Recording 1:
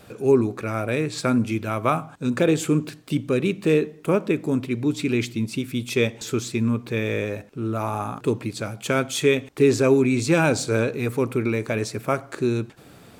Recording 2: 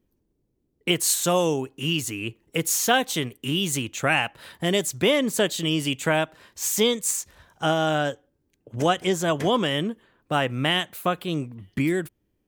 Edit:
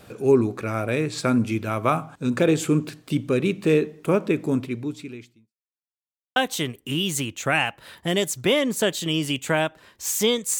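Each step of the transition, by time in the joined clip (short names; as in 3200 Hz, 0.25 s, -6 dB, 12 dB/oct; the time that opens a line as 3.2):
recording 1
4.55–5.55 fade out quadratic
5.55–6.36 mute
6.36 switch to recording 2 from 2.93 s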